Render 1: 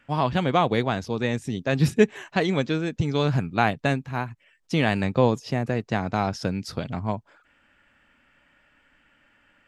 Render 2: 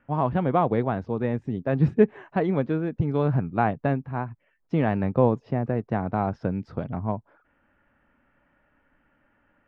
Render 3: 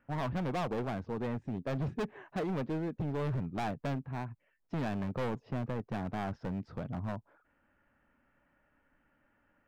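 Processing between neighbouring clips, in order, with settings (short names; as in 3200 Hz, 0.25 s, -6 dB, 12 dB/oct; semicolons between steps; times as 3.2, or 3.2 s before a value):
LPF 1200 Hz 12 dB/oct
overloaded stage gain 25 dB; gain -6 dB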